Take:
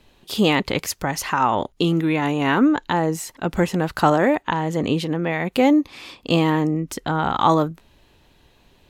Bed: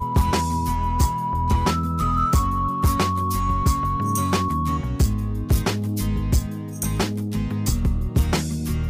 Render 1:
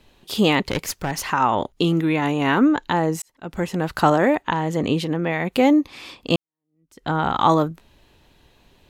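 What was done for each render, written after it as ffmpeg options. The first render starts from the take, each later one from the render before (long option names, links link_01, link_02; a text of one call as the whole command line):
ffmpeg -i in.wav -filter_complex "[0:a]asettb=1/sr,asplit=3[link_01][link_02][link_03];[link_01]atrim=end=0.634[link_04];[link_02]atrim=start=0.63:end=1.33,asetpts=PTS-STARTPTS,afade=type=in:duration=0.004:curve=qsin,afade=type=out:start_time=0.696:duration=0.004:curve=qsin,aeval=exprs='clip(val(0),-1,0.0562)':channel_layout=same[link_05];[link_03]atrim=start=1.326[link_06];[link_04][link_05]acrossfade=duration=0.004:curve1=hsin:curve2=qsin[link_07];[link_07][link_06]acrossfade=duration=0.004:curve1=qsin:curve2=hsin,asplit=3[link_08][link_09][link_10];[link_08]atrim=end=3.22,asetpts=PTS-STARTPTS,afade=type=out:start_time=3.216:duration=0.004:curve=hsin[link_11];[link_09]atrim=start=3.22:end=6.36,asetpts=PTS-STARTPTS,afade=type=in:duration=0.72,afade=type=out:start_time=3.136:duration=0.004:curve=hsin[link_12];[link_10]atrim=start=6.36,asetpts=PTS-STARTPTS,afade=type=in:duration=0.73:curve=exp[link_13];[link_11][link_12][link_13]concat=n=3:v=0:a=1" out.wav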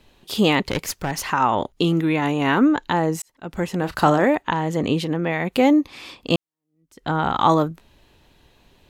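ffmpeg -i in.wav -filter_complex "[0:a]asettb=1/sr,asplit=3[link_01][link_02][link_03];[link_01]atrim=end=3.784[link_04];[link_02]atrim=start=3.78:end=4.25,asetpts=PTS-STARTPTS,afade=type=in:duration=0.004:curve=qsin,afade=type=out:start_time=0.466:duration=0.004:curve=qsin,asplit=2[link_05][link_06];[link_06]adelay=34,volume=-12dB[link_07];[link_05][link_07]amix=inputs=2:normalize=0,atrim=end_sample=20727[link_08];[link_03]atrim=start=4.246[link_09];[link_04][link_08]acrossfade=duration=0.004:curve1=hsin:curve2=qsin[link_10];[link_10][link_09]acrossfade=duration=0.004:curve1=qsin:curve2=hsin" out.wav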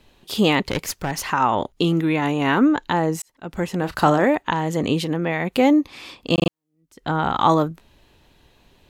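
ffmpeg -i in.wav -filter_complex "[0:a]asettb=1/sr,asplit=3[link_01][link_02][link_03];[link_01]atrim=end=4.464[link_04];[link_02]atrim=start=4.46:end=5.24,asetpts=PTS-STARTPTS,afade=type=in:duration=0.004:curve=qsin,afade=type=out:start_time=0.776:duration=0.004:curve=qsin,highshelf=frequency=5000:gain=5[link_05];[link_03]atrim=start=5.236[link_06];[link_04][link_05]acrossfade=duration=0.004:curve1=hsin:curve2=qsin[link_07];[link_07][link_06]acrossfade=duration=0.004:curve1=qsin:curve2=hsin,asplit=5[link_08][link_09][link_10][link_11][link_12];[link_08]atrim=end=6.382[link_13];[link_09]atrim=start=6.338:end=6.382[link_14];[link_10]atrim=start=6.338:end=6.382[link_15];[link_11]atrim=start=6.338:end=6.382[link_16];[link_12]atrim=start=6.498[link_17];[link_13][link_14]acrossfade=duration=0.004:curve1=hsin:curve2=hsin[link_18];[link_18][link_15]acrossfade=duration=0.004:curve1=hsin:curve2=hsin[link_19];[link_19][link_16]acrossfade=duration=0.004:curve1=hsin:curve2=hsin[link_20];[link_20][link_17]acrossfade=duration=0.004:curve1=hsin:curve2=hsin" out.wav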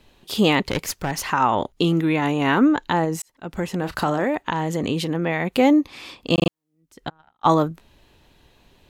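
ffmpeg -i in.wav -filter_complex "[0:a]asettb=1/sr,asplit=3[link_01][link_02][link_03];[link_01]atrim=end=3.044[link_04];[link_02]atrim=start=3.04:end=5.15,asetpts=PTS-STARTPTS,afade=type=in:duration=0.004:curve=qsin,afade=type=out:start_time=2.106:duration=0.004:curve=qsin,acompressor=threshold=-19dB:ratio=2.5:attack=3.2:release=140:knee=1:detection=peak[link_05];[link_03]atrim=start=5.146[link_06];[link_04][link_05]acrossfade=duration=0.004:curve1=hsin:curve2=qsin[link_07];[link_07][link_06]acrossfade=duration=0.004:curve1=qsin:curve2=hsin,asplit=3[link_08][link_09][link_10];[link_08]afade=type=out:start_time=7.08:duration=0.02[link_11];[link_09]agate=range=-47dB:threshold=-17dB:ratio=16:release=100:detection=peak,afade=type=in:start_time=7.08:duration=0.02,afade=type=out:start_time=7.5:duration=0.02[link_12];[link_10]afade=type=in:start_time=7.5:duration=0.02[link_13];[link_11][link_12][link_13]amix=inputs=3:normalize=0" out.wav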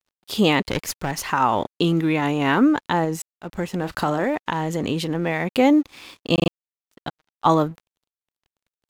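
ffmpeg -i in.wav -af "aeval=exprs='sgn(val(0))*max(abs(val(0))-0.00473,0)':channel_layout=same" out.wav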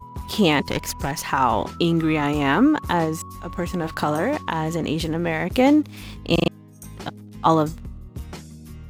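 ffmpeg -i in.wav -i bed.wav -filter_complex "[1:a]volume=-15dB[link_01];[0:a][link_01]amix=inputs=2:normalize=0" out.wav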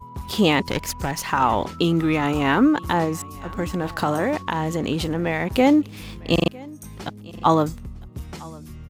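ffmpeg -i in.wav -af "aecho=1:1:955:0.075" out.wav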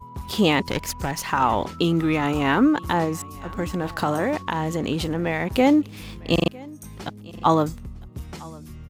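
ffmpeg -i in.wav -af "volume=-1dB" out.wav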